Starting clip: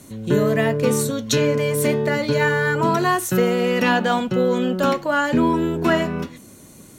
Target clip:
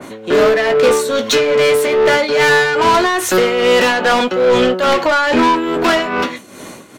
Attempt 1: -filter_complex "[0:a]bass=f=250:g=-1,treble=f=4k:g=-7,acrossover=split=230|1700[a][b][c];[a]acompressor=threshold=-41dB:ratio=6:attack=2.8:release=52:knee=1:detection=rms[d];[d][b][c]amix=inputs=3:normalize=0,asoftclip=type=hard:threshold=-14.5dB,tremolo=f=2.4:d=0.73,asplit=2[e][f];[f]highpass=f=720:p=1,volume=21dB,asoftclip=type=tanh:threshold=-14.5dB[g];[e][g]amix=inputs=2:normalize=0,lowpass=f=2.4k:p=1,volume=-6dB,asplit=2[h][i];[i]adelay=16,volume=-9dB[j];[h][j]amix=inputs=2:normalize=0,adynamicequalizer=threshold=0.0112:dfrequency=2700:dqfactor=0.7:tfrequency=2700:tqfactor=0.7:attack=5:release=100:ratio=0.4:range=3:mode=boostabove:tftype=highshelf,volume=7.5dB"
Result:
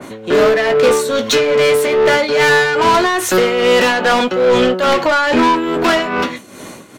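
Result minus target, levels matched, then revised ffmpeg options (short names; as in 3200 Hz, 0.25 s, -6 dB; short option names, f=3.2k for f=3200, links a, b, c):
compressor: peak gain reduction -6 dB
-filter_complex "[0:a]bass=f=250:g=-1,treble=f=4k:g=-7,acrossover=split=230|1700[a][b][c];[a]acompressor=threshold=-48.5dB:ratio=6:attack=2.8:release=52:knee=1:detection=rms[d];[d][b][c]amix=inputs=3:normalize=0,asoftclip=type=hard:threshold=-14.5dB,tremolo=f=2.4:d=0.73,asplit=2[e][f];[f]highpass=f=720:p=1,volume=21dB,asoftclip=type=tanh:threshold=-14.5dB[g];[e][g]amix=inputs=2:normalize=0,lowpass=f=2.4k:p=1,volume=-6dB,asplit=2[h][i];[i]adelay=16,volume=-9dB[j];[h][j]amix=inputs=2:normalize=0,adynamicequalizer=threshold=0.0112:dfrequency=2700:dqfactor=0.7:tfrequency=2700:tqfactor=0.7:attack=5:release=100:ratio=0.4:range=3:mode=boostabove:tftype=highshelf,volume=7.5dB"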